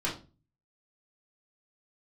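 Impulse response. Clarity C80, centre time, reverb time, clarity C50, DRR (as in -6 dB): 15.5 dB, 25 ms, 0.35 s, 9.0 dB, -6.0 dB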